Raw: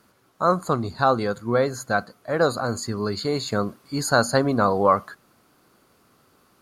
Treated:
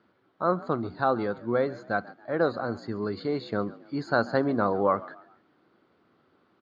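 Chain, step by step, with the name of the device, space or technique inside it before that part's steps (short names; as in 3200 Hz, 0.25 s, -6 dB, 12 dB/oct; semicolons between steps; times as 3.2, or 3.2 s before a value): frequency-shifting delay pedal into a guitar cabinet (frequency-shifting echo 0.138 s, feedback 37%, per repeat +62 Hz, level -20 dB; speaker cabinet 96–3500 Hz, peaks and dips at 130 Hz -3 dB, 330 Hz +5 dB, 1100 Hz -3 dB, 2600 Hz -5 dB); gain -5 dB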